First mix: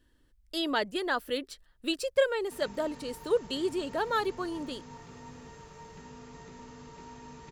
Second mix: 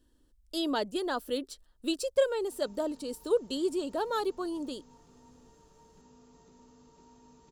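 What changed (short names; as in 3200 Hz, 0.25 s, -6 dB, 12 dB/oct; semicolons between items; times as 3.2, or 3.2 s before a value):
background -10.0 dB; master: add graphic EQ 125/250/2000/8000 Hz -6/+3/-11/+3 dB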